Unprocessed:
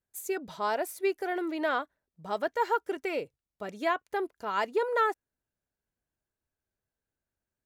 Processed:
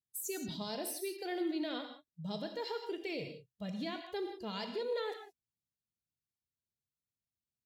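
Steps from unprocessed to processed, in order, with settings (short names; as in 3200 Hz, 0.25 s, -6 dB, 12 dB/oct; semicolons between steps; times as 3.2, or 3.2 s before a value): HPF 90 Hz; spectral noise reduction 14 dB; EQ curve 160 Hz 0 dB, 1300 Hz -25 dB, 4100 Hz -1 dB, 9200 Hz -4 dB; limiter -39.5 dBFS, peak gain reduction 11 dB; non-linear reverb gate 0.2 s flat, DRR 5 dB; gain +8.5 dB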